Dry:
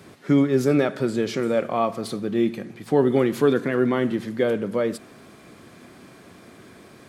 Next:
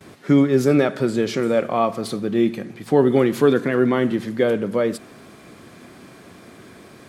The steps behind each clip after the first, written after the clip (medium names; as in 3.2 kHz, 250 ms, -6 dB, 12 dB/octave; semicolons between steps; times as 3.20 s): gate with hold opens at -40 dBFS; trim +3 dB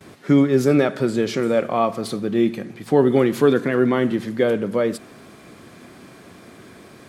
no audible change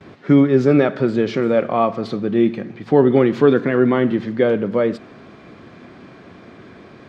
distance through air 190 m; trim +3 dB